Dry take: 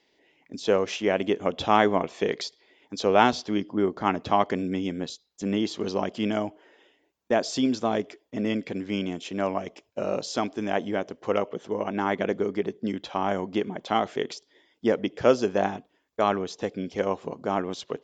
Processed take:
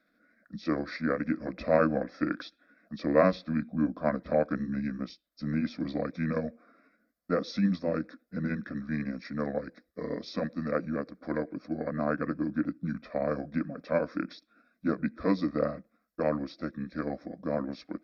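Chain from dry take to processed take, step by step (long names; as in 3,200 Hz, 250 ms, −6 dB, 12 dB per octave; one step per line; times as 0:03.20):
pitch shift by two crossfaded delay taps −5 semitones
phaser with its sweep stopped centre 580 Hz, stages 8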